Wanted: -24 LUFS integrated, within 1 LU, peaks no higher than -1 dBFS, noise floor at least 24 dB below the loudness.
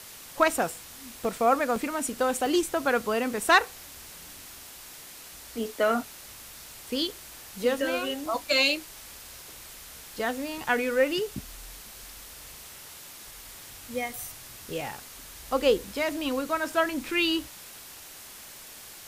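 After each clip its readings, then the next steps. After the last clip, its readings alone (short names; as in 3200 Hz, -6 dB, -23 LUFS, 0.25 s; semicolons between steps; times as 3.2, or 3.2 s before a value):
dropouts 8; longest dropout 1.3 ms; noise floor -46 dBFS; noise floor target -51 dBFS; loudness -27.0 LUFS; peak -8.5 dBFS; loudness target -24.0 LUFS
-> interpolate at 1.25/1.76/2.46/8.26/10.58/14.24/14.81/15.62, 1.3 ms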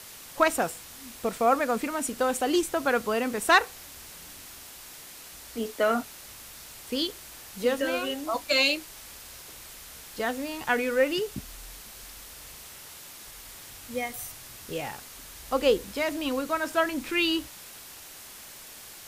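dropouts 0; noise floor -46 dBFS; noise floor target -51 dBFS
-> denoiser 6 dB, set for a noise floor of -46 dBFS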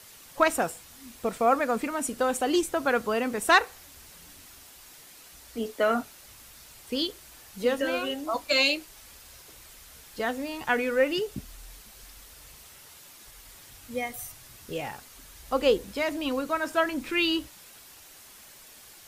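noise floor -51 dBFS; loudness -27.0 LUFS; peak -8.5 dBFS; loudness target -24.0 LUFS
-> gain +3 dB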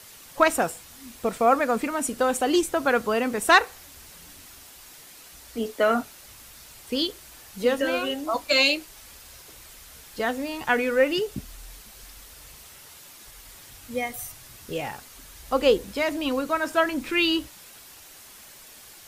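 loudness -24.0 LUFS; peak -5.5 dBFS; noise floor -48 dBFS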